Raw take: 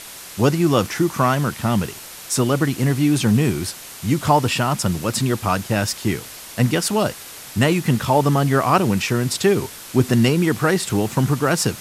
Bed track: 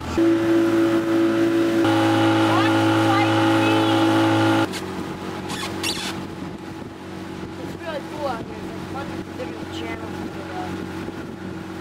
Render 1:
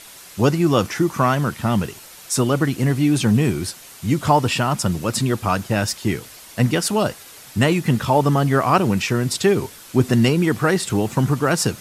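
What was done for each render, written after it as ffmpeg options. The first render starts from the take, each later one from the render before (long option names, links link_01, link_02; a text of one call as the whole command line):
ffmpeg -i in.wav -af "afftdn=noise_reduction=6:noise_floor=-38" out.wav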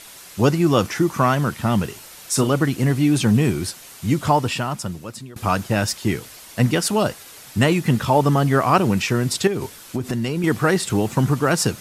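ffmpeg -i in.wav -filter_complex "[0:a]asettb=1/sr,asplit=3[link_01][link_02][link_03];[link_01]atrim=end=1.864[link_04];[link_02]atrim=start=1.86:end=2.48,asetpts=PTS-STARTPTS,afade=type=in:duration=0.004:curve=qsin,afade=type=out:start_time=0.616:duration=0.004:curve=qsin,asplit=2[link_05][link_06];[link_06]adelay=36,volume=-10.5dB[link_07];[link_05][link_07]amix=inputs=2:normalize=0,atrim=end_sample=27342[link_08];[link_03]atrim=start=2.476[link_09];[link_04][link_08]acrossfade=duration=0.004:curve1=hsin:curve2=qsin[link_10];[link_10][link_09]acrossfade=duration=0.004:curve1=qsin:curve2=hsin,asettb=1/sr,asplit=3[link_11][link_12][link_13];[link_11]atrim=end=9.474[link_14];[link_12]atrim=start=9.47:end=10.44,asetpts=PTS-STARTPTS,afade=type=in:duration=0.004:curve=qsin,afade=type=out:start_time=0.966:duration=0.004:curve=qsin,acompressor=threshold=-19dB:ratio=10:attack=3.2:release=140:knee=1:detection=peak[link_15];[link_13]atrim=start=10.436[link_16];[link_14][link_15]acrossfade=duration=0.004:curve1=hsin:curve2=qsin[link_17];[link_17][link_16]acrossfade=duration=0.004:curve1=qsin:curve2=hsin,asplit=2[link_18][link_19];[link_18]atrim=end=5.36,asetpts=PTS-STARTPTS,afade=type=out:start_time=4.09:duration=1.27:silence=0.0668344[link_20];[link_19]atrim=start=5.36,asetpts=PTS-STARTPTS,afade=type=in:duration=0.004:curve=hsin:silence=0.0668344[link_21];[link_20][link_21]concat=n=2:v=0:a=1" out.wav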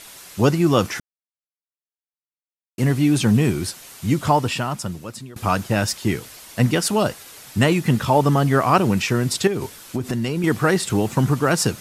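ffmpeg -i in.wav -filter_complex "[0:a]asplit=3[link_01][link_02][link_03];[link_01]atrim=end=1,asetpts=PTS-STARTPTS,afade=type=out:start_time=0.996:duration=0.004:curve=hsin[link_04];[link_02]atrim=start=1:end=2.78,asetpts=PTS-STARTPTS,volume=0[link_05];[link_03]atrim=start=2.78,asetpts=PTS-STARTPTS,afade=type=in:duration=0.004:curve=hsin[link_06];[link_04][link_05][link_06]concat=n=3:v=0:a=1" out.wav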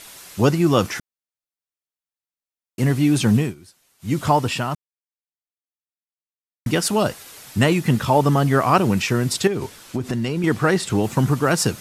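ffmpeg -i in.wav -filter_complex "[0:a]asettb=1/sr,asplit=3[link_01][link_02][link_03];[link_01]atrim=end=9.484[link_04];[link_02]atrim=start=9.48:end=11.04,asetpts=PTS-STARTPTS,afade=type=in:duration=0.004:curve=qsin,afade=type=out:start_time=1.556:duration=0.004:curve=qsin,highshelf=frequency=11000:gain=-10[link_05];[link_03]atrim=start=11.036[link_06];[link_04][link_05]acrossfade=duration=0.004:curve1=hsin:curve2=qsin[link_07];[link_07][link_06]acrossfade=duration=0.004:curve1=qsin:curve2=hsin,asplit=5[link_08][link_09][link_10][link_11][link_12];[link_08]atrim=end=3.55,asetpts=PTS-STARTPTS,afade=type=out:start_time=3.36:duration=0.19:silence=0.0944061[link_13];[link_09]atrim=start=3.55:end=3.99,asetpts=PTS-STARTPTS,volume=-20.5dB[link_14];[link_10]atrim=start=3.99:end=4.75,asetpts=PTS-STARTPTS,afade=type=in:duration=0.19:silence=0.0944061,afade=type=out:start_time=0.756:duration=0.004:curve=hsin[link_15];[link_11]atrim=start=4.75:end=6.66,asetpts=PTS-STARTPTS,volume=0[link_16];[link_12]atrim=start=6.66,asetpts=PTS-STARTPTS,afade=type=in:duration=0.004:curve=hsin[link_17];[link_13][link_14][link_15][link_16][link_17]concat=n=5:v=0:a=1" out.wav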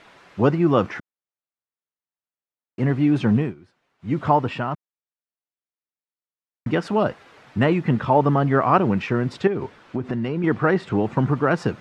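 ffmpeg -i in.wav -af "lowpass=1900,lowshelf=frequency=75:gain=-11.5" out.wav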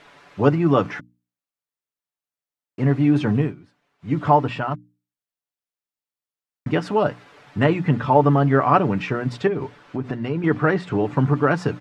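ffmpeg -i in.wav -af "bandreject=frequency=60:width_type=h:width=6,bandreject=frequency=120:width_type=h:width=6,bandreject=frequency=180:width_type=h:width=6,bandreject=frequency=240:width_type=h:width=6,bandreject=frequency=300:width_type=h:width=6,aecho=1:1:6.9:0.4" out.wav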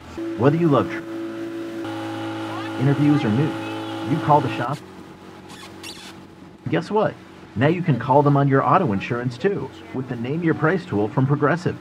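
ffmpeg -i in.wav -i bed.wav -filter_complex "[1:a]volume=-11dB[link_01];[0:a][link_01]amix=inputs=2:normalize=0" out.wav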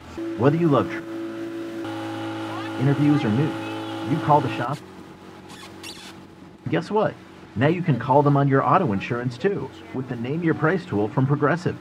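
ffmpeg -i in.wav -af "volume=-1.5dB" out.wav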